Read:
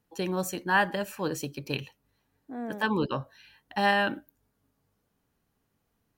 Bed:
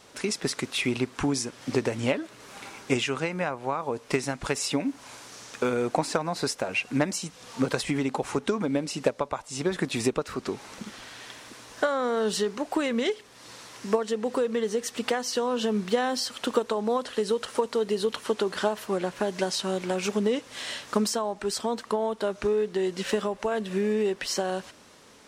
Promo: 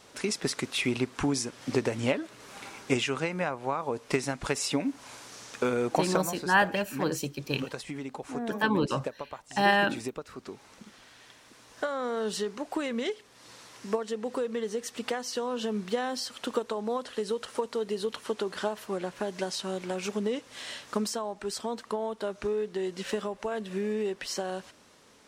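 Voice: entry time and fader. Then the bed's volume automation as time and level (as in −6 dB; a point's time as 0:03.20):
5.80 s, +1.0 dB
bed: 0:06.13 −1.5 dB
0:06.42 −10.5 dB
0:11.39 −10.5 dB
0:12.02 −5 dB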